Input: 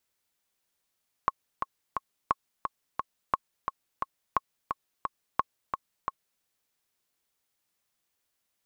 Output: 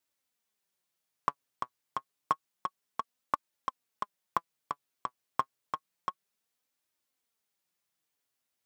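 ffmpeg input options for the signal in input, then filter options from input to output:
-f lavfi -i "aevalsrc='pow(10,(-10-6*gte(mod(t,3*60/175),60/175))/20)*sin(2*PI*1090*mod(t,60/175))*exp(-6.91*mod(t,60/175)/0.03)':d=5.14:s=44100"
-filter_complex "[0:a]highpass=74,flanger=delay=3.1:depth=5.1:regen=49:speed=0.29:shape=triangular,asplit=2[s0][s1];[s1]acrusher=bits=4:mix=0:aa=0.5,volume=0.398[s2];[s0][s2]amix=inputs=2:normalize=0"

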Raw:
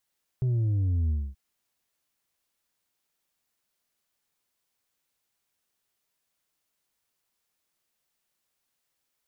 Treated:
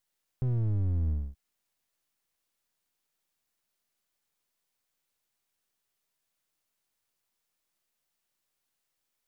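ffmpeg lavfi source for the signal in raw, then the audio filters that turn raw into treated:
-f lavfi -i "aevalsrc='0.0708*clip((0.93-t)/0.25,0,1)*tanh(1.58*sin(2*PI*130*0.93/log(65/130)*(exp(log(65/130)*t/0.93)-1)))/tanh(1.58)':d=0.93:s=44100"
-af "aeval=exprs='if(lt(val(0),0),0.447*val(0),val(0))':c=same"

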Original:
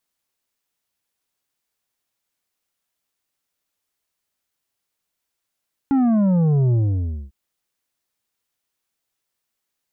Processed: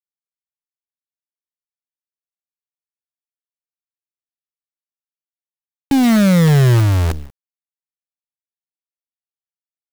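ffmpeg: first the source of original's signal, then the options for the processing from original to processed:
-f lavfi -i "aevalsrc='0.178*clip((1.4-t)/0.58,0,1)*tanh(2.37*sin(2*PI*280*1.4/log(65/280)*(exp(log(65/280)*t/1.4)-1)))/tanh(2.37)':d=1.4:s=44100"
-filter_complex "[0:a]equalizer=f=480:w=0.84:g=7.5,acrossover=split=170|610[s0][s1][s2];[s0]acontrast=70[s3];[s3][s1][s2]amix=inputs=3:normalize=0,acrusher=bits=4:dc=4:mix=0:aa=0.000001"

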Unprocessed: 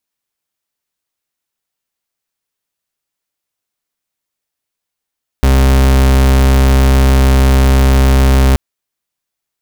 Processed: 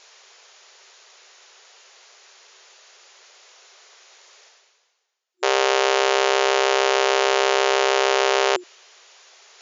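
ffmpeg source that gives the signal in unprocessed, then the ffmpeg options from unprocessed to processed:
-f lavfi -i "aevalsrc='0.398*(2*lt(mod(66.4*t,1),0.4)-1)':d=3.13:s=44100"
-af "afftfilt=real='re*between(b*sr/4096,360,7200)':imag='im*between(b*sr/4096,360,7200)':win_size=4096:overlap=0.75,adynamicequalizer=threshold=0.01:dfrequency=2900:dqfactor=4.3:tfrequency=2900:tqfactor=4.3:attack=5:release=100:ratio=0.375:range=2:mode=boostabove:tftype=bell,areverse,acompressor=mode=upward:threshold=0.0631:ratio=2.5,areverse"

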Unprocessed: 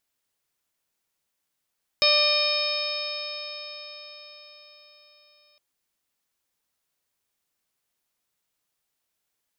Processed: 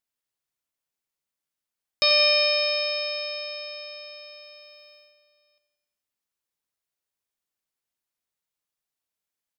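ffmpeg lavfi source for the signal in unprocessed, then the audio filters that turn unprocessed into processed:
-f lavfi -i "aevalsrc='0.0668*pow(10,-3*t/4.91)*sin(2*PI*590.97*t)+0.0316*pow(10,-3*t/4.91)*sin(2*PI*1187.76*t)+0.0119*pow(10,-3*t/4.91)*sin(2*PI*1796.09*t)+0.0668*pow(10,-3*t/4.91)*sin(2*PI*2421.5*t)+0.0282*pow(10,-3*t/4.91)*sin(2*PI*3069.28*t)+0.075*pow(10,-3*t/4.91)*sin(2*PI*3744.38*t)+0.0422*pow(10,-3*t/4.91)*sin(2*PI*4451.4*t)+0.106*pow(10,-3*t/4.91)*sin(2*PI*5194.57*t)':d=3.56:s=44100"
-af "agate=range=0.355:threshold=0.002:ratio=16:detection=peak,aecho=1:1:88|176|264|352|440|528:0.282|0.161|0.0916|0.0522|0.0298|0.017"

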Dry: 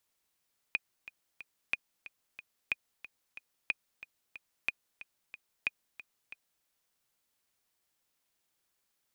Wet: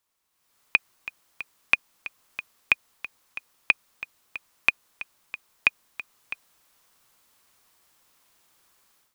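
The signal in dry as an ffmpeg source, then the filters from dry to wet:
-f lavfi -i "aevalsrc='pow(10,(-16-16*gte(mod(t,3*60/183),60/183))/20)*sin(2*PI*2470*mod(t,60/183))*exp(-6.91*mod(t,60/183)/0.03)':d=5.9:s=44100"
-af "equalizer=f=1100:w=2.2:g=6,dynaudnorm=f=300:g=3:m=5.62"

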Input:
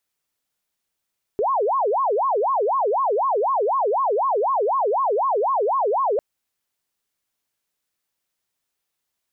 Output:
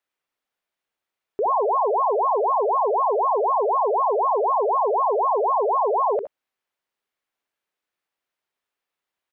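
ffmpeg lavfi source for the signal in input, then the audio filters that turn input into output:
-f lavfi -i "aevalsrc='0.133*sin(2*PI*(748.5*t-351.5/(2*PI*4)*sin(2*PI*4*t)))':d=4.8:s=44100"
-filter_complex "[0:a]bass=f=250:g=-10,treble=f=4000:g=-13,asplit=2[s0][s1];[s1]aecho=0:1:65|78:0.316|0.211[s2];[s0][s2]amix=inputs=2:normalize=0"

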